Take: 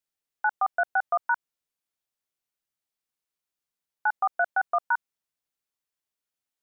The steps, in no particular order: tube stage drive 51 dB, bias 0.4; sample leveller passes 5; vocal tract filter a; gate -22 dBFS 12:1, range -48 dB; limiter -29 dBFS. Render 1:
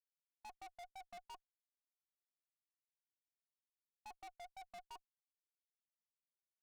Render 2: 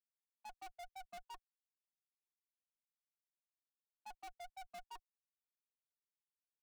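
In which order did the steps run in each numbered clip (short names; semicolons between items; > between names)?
sample leveller > gate > vocal tract filter > limiter > tube stage; gate > limiter > vocal tract filter > tube stage > sample leveller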